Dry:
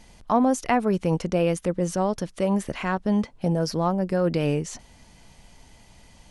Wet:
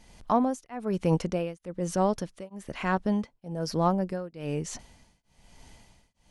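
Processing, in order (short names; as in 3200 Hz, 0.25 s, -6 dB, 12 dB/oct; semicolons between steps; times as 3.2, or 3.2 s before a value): tremolo triangle 1.1 Hz, depth 100%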